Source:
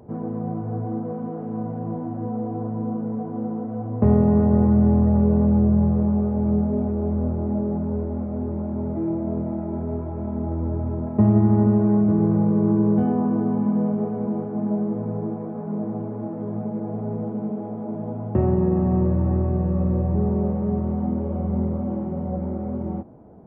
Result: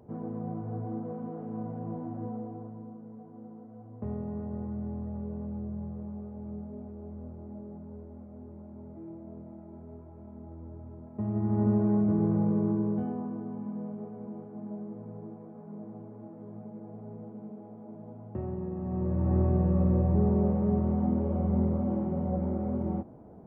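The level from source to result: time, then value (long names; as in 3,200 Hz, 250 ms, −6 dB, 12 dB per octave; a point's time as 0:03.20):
0:02.24 −8 dB
0:02.95 −19 dB
0:11.09 −19 dB
0:11.69 −7 dB
0:12.52 −7 dB
0:13.42 −15.5 dB
0:18.77 −15.5 dB
0:19.40 −3 dB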